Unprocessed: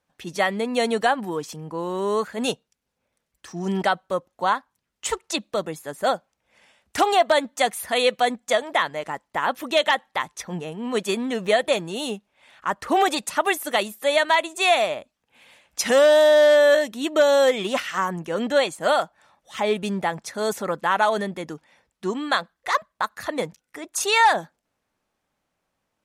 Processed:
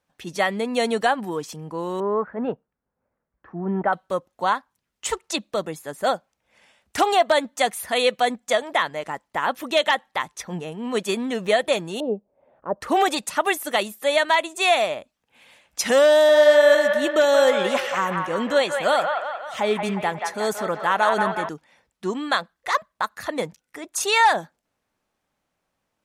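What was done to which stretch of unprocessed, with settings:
0:02.00–0:03.93: low-pass filter 1,600 Hz 24 dB per octave
0:12.00–0:12.81: low-pass with resonance 540 Hz, resonance Q 2.8
0:16.11–0:21.49: delay with a band-pass on its return 179 ms, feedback 54%, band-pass 1,300 Hz, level −3 dB

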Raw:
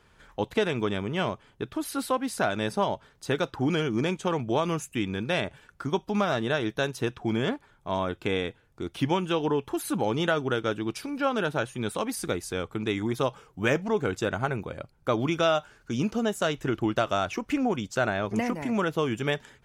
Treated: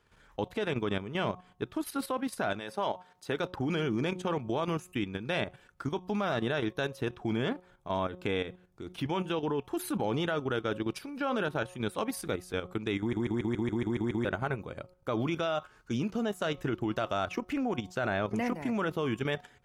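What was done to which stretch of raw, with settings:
0:02.59–0:03.41: high-pass filter 640 Hz → 160 Hz 6 dB per octave
0:12.99: stutter in place 0.14 s, 9 plays
whole clip: hum removal 181.5 Hz, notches 7; dynamic equaliser 7,100 Hz, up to −6 dB, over −52 dBFS, Q 1.2; output level in coarse steps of 10 dB

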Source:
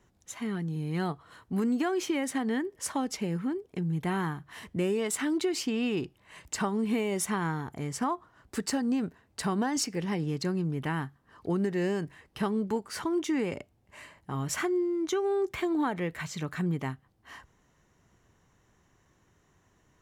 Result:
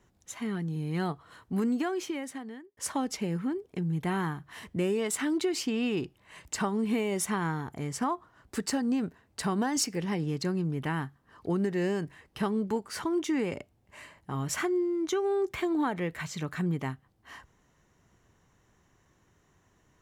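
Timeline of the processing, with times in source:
0:01.64–0:02.77: fade out
0:09.56–0:09.97: high-shelf EQ 7,600 Hz +5 dB

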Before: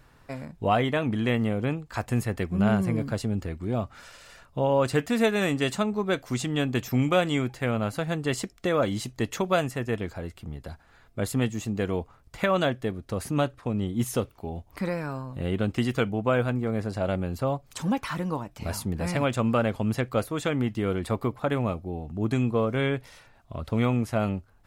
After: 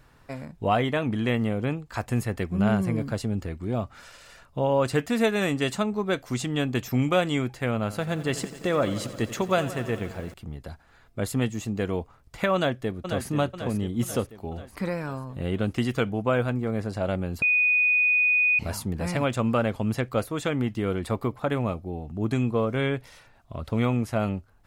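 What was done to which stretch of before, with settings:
0:07.81–0:10.34: feedback echo at a low word length 87 ms, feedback 80%, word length 8 bits, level −14.5 dB
0:12.55–0:13.28: delay throw 490 ms, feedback 55%, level −7 dB
0:17.42–0:18.59: beep over 2,480 Hz −18 dBFS

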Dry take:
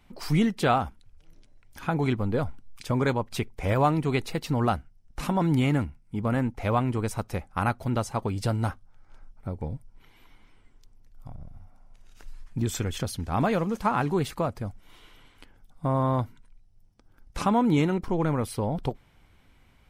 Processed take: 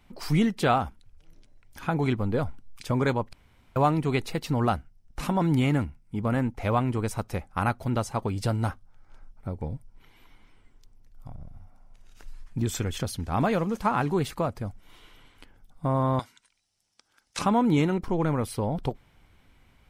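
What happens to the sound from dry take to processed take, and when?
0:03.33–0:03.76: fill with room tone
0:16.19–0:17.39: meter weighting curve ITU-R 468

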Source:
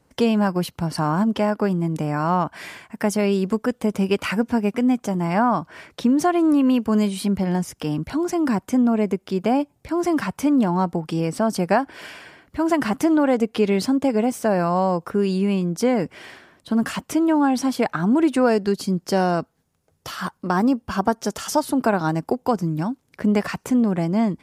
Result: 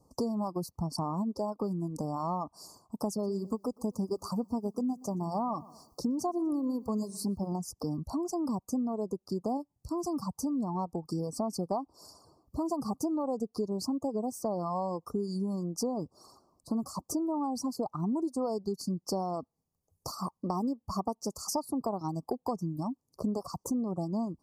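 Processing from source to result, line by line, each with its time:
0:03.11–0:07.53: feedback echo at a low word length 121 ms, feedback 35%, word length 8 bits, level −14 dB
0:09.57–0:10.75: parametric band 520 Hz −5 dB 1.6 octaves
whole clip: reverb reduction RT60 1.1 s; Chebyshev band-stop filter 1,200–4,500 Hz, order 5; downward compressor 3 to 1, threshold −30 dBFS; level −2 dB

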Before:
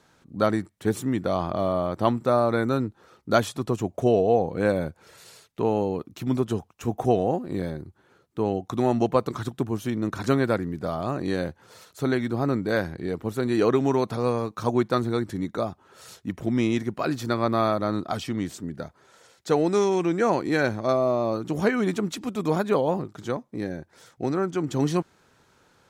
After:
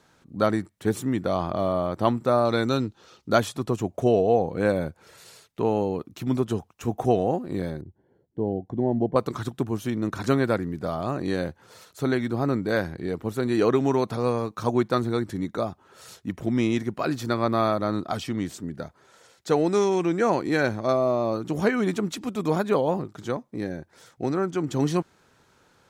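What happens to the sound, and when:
0:02.45–0:03.29: flat-topped bell 4,300 Hz +9.5 dB
0:07.81–0:09.16: moving average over 35 samples

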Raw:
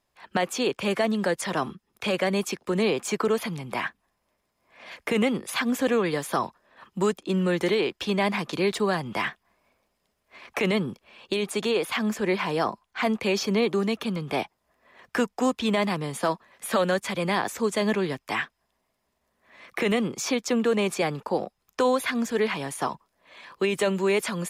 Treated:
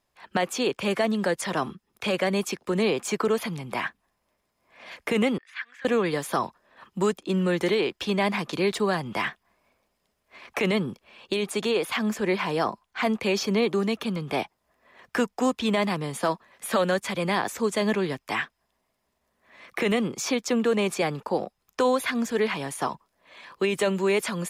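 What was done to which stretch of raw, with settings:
0:05.38–0:05.85: four-pole ladder band-pass 2,000 Hz, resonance 60%

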